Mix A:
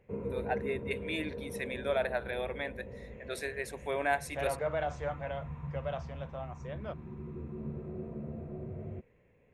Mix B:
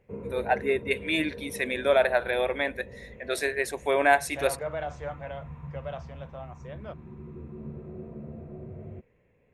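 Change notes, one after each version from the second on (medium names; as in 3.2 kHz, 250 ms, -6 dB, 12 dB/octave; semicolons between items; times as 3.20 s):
first voice +9.5 dB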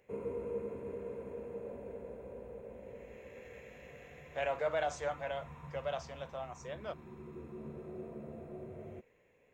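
first voice: muted; master: add tone controls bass -11 dB, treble +12 dB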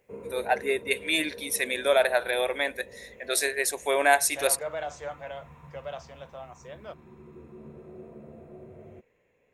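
first voice: unmuted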